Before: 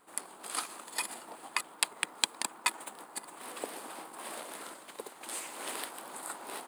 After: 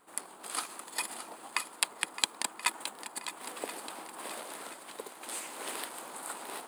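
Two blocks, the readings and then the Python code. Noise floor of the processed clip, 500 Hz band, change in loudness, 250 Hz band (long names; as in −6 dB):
−52 dBFS, +0.5 dB, +0.5 dB, +0.5 dB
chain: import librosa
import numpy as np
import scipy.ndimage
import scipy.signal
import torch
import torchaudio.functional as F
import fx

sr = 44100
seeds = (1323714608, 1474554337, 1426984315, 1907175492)

y = fx.echo_swing(x, sr, ms=1029, ratio=1.5, feedback_pct=41, wet_db=-11.5)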